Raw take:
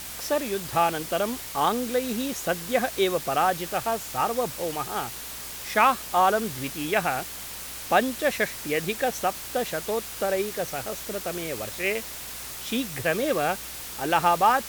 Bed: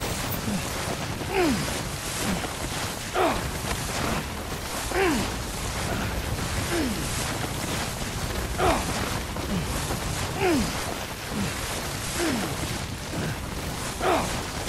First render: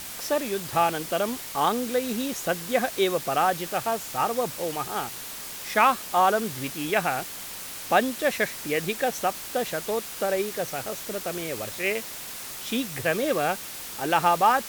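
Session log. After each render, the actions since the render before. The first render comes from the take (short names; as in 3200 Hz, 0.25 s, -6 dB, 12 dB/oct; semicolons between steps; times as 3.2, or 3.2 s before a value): de-hum 60 Hz, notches 2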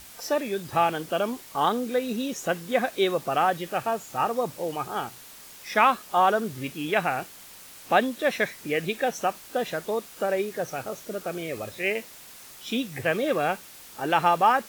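noise print and reduce 9 dB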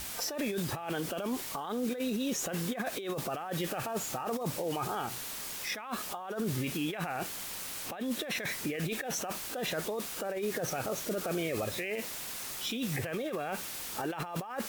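negative-ratio compressor -33 dBFS, ratio -1; limiter -24.5 dBFS, peak gain reduction 9 dB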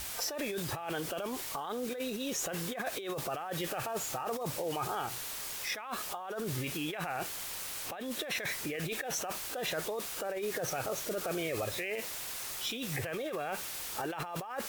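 bell 220 Hz -7.5 dB 0.93 oct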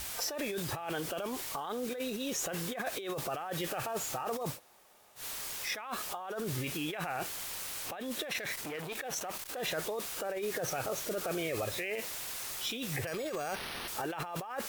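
4.55–5.2 room tone, crossfade 0.10 s; 8.27–9.6 core saturation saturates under 1300 Hz; 13.07–13.88 careless resampling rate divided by 6×, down none, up hold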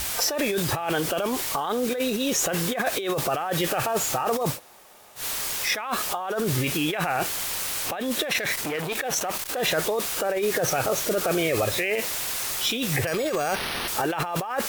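gain +11 dB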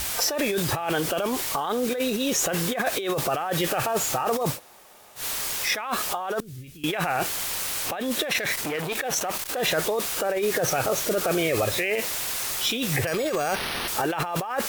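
6.4–6.84 passive tone stack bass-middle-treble 10-0-1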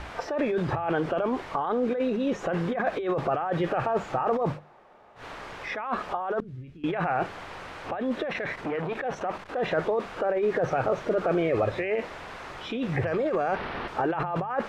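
LPF 1500 Hz 12 dB/oct; notches 50/100/150/200 Hz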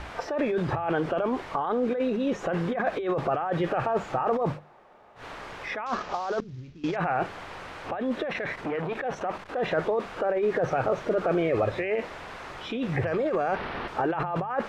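5.86–6.96 CVSD 32 kbps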